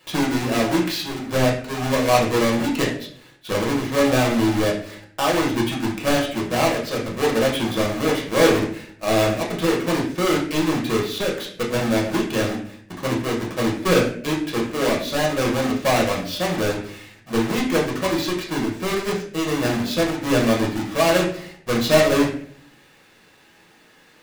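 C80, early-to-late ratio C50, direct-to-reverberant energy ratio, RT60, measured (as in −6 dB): 10.0 dB, 6.0 dB, −3.0 dB, 0.55 s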